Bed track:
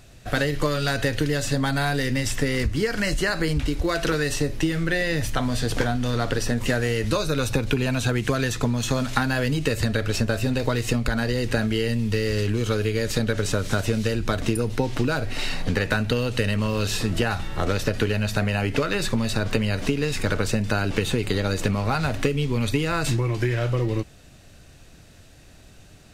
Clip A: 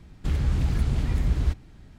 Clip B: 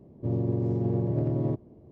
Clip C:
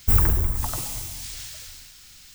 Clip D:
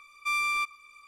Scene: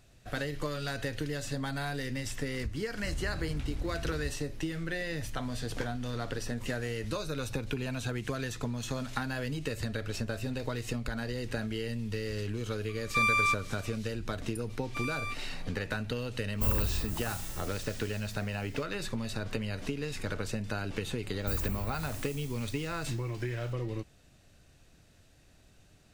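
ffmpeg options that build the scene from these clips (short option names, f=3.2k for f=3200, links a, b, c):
-filter_complex "[4:a]asplit=2[a][b];[3:a]asplit=2[c][d];[0:a]volume=-11.5dB[e];[a]equalizer=f=1.6k:t=o:w=1:g=9.5[f];[1:a]atrim=end=1.98,asetpts=PTS-STARTPTS,volume=-14.5dB,afade=t=in:d=0.004:c=hsin,afade=t=out:st=1.976:d=0.004:c=hsin,adelay=2780[g];[f]atrim=end=1.07,asetpts=PTS-STARTPTS,volume=-3dB,afade=t=in:d=0.004:c=hsin,afade=t=out:st=1.066:d=0.004:c=hsin,adelay=12890[h];[b]atrim=end=1.07,asetpts=PTS-STARTPTS,volume=-10dB,afade=t=in:d=0.004:c=hsin,afade=t=out:st=1.066:d=0.004:c=hsin,adelay=14690[i];[c]atrim=end=2.34,asetpts=PTS-STARTPTS,volume=-11dB,afade=t=in:d=0.1,afade=t=out:st=2.24:d=0.1,adelay=16530[j];[d]atrim=end=2.34,asetpts=PTS-STARTPTS,volume=-16dB,afade=t=in:d=0.004:c=hsin,afade=t=out:st=2.336:d=0.004:c=hsin,adelay=21390[k];[e][g][h][i][j][k]amix=inputs=6:normalize=0"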